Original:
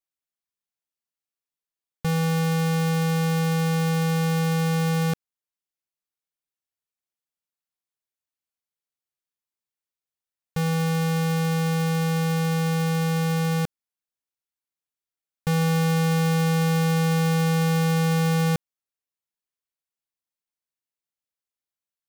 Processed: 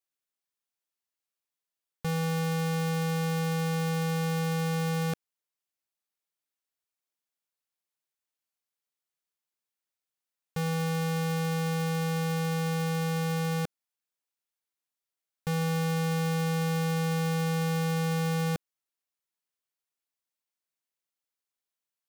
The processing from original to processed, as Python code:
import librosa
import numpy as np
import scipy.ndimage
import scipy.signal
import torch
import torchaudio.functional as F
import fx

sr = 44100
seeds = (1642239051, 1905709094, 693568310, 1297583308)

y = fx.low_shelf(x, sr, hz=160.0, db=-10.0)
y = 10.0 ** (-25.5 / 20.0) * np.tanh(y / 10.0 ** (-25.5 / 20.0))
y = F.gain(torch.from_numpy(y), 1.0).numpy()